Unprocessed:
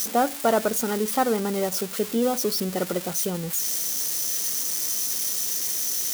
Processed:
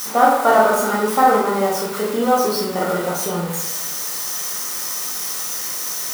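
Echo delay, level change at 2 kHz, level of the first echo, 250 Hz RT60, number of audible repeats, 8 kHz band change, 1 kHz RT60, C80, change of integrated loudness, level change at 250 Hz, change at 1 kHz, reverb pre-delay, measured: none, +10.0 dB, none, 0.90 s, none, +1.0 dB, 0.90 s, 5.0 dB, +5.0 dB, +3.5 dB, +11.5 dB, 13 ms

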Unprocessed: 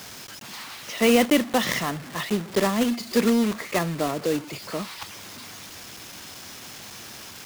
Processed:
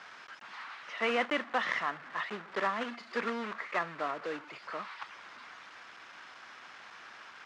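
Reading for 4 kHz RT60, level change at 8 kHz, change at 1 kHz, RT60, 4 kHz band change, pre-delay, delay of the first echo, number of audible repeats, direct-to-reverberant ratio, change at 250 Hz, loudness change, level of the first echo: none, -25.0 dB, -4.5 dB, none, -12.5 dB, none, none, none, none, -19.0 dB, -11.0 dB, none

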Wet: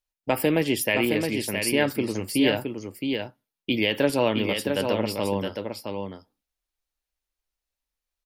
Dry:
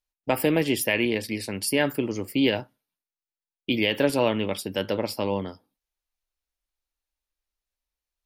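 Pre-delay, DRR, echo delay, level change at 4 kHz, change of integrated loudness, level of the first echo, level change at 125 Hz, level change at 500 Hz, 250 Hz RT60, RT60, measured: none, none, 0.667 s, +1.0 dB, 0.0 dB, -5.5 dB, +1.0 dB, +1.0 dB, none, none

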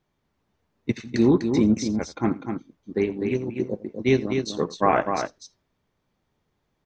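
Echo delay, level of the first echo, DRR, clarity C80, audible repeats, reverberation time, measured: 86 ms, -19.0 dB, none, none, 2, none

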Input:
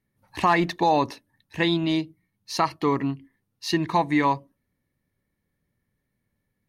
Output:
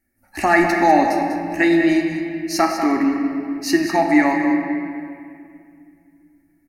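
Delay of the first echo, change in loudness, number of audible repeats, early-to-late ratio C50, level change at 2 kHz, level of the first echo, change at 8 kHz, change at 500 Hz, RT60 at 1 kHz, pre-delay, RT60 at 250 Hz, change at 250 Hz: 0.196 s, +6.0 dB, 1, 2.5 dB, +9.5 dB, -9.5 dB, +9.0 dB, +7.0 dB, 2.2 s, 3 ms, 3.3 s, +9.5 dB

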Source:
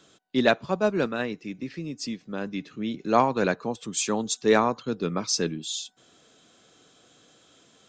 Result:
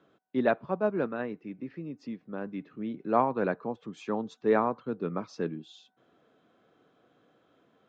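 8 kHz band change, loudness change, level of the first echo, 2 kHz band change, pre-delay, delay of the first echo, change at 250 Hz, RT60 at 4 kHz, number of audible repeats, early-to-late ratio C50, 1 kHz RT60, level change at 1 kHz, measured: under -25 dB, -5.0 dB, none, -8.0 dB, none, none, -4.5 dB, none, none, none, none, -4.5 dB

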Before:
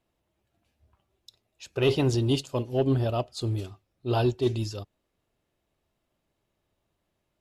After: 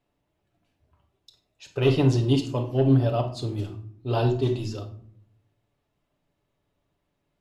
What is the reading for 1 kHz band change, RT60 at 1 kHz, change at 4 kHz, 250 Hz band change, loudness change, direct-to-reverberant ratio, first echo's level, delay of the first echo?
+1.5 dB, 0.55 s, -1.0 dB, +3.5 dB, +3.0 dB, 3.0 dB, none, none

